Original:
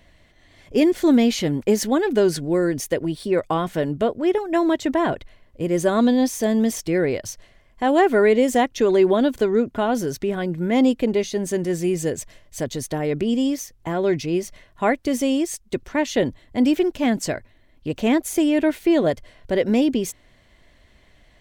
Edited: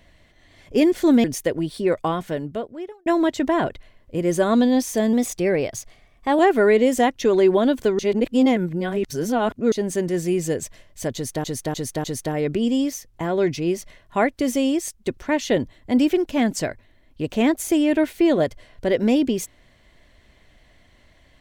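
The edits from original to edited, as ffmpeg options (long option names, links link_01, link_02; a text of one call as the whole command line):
ffmpeg -i in.wav -filter_complex "[0:a]asplit=10[link_01][link_02][link_03][link_04][link_05][link_06][link_07][link_08][link_09][link_10];[link_01]atrim=end=1.242[link_11];[link_02]atrim=start=2.698:end=4.52,asetpts=PTS-STARTPTS,afade=type=out:start_time=0.722:duration=1.1[link_12];[link_03]atrim=start=4.52:end=6.594,asetpts=PTS-STARTPTS,afade=type=in:duration=0.004:curve=hsin[link_13];[link_04]atrim=start=6.59:end=7.95,asetpts=PTS-STARTPTS,asetrate=47628,aresample=44100,atrim=end_sample=55533,asetpts=PTS-STARTPTS[link_14];[link_05]atrim=start=7.946:end=9.552[link_15];[link_06]atrim=start=9.548:end=11.282,asetpts=PTS-STARTPTS,areverse[link_16];[link_07]atrim=start=11.278:end=13.002[link_17];[link_08]atrim=start=12.698:end=13.002[link_18];[link_09]atrim=start=12.698:end=13.002[link_19];[link_10]atrim=start=12.698[link_20];[link_12][link_13]concat=n=2:v=0:a=1[link_21];[link_11][link_21]acrossfade=duration=0.004:curve1=hsin:curve2=hsin[link_22];[link_22][link_14]acrossfade=duration=0.004:curve1=hsin:curve2=hsin[link_23];[link_23][link_15]acrossfade=duration=0.004:curve1=hsin:curve2=hsin[link_24];[link_24][link_16]acrossfade=duration=0.004:curve1=hsin:curve2=hsin[link_25];[link_25][link_17]acrossfade=duration=0.004:curve1=hsin:curve2=hsin[link_26];[link_26][link_18]acrossfade=duration=0.004:curve1=hsin:curve2=hsin[link_27];[link_27][link_19]acrossfade=duration=0.004:curve1=hsin:curve2=hsin[link_28];[link_28][link_20]acrossfade=duration=0.004:curve1=hsin:curve2=hsin" out.wav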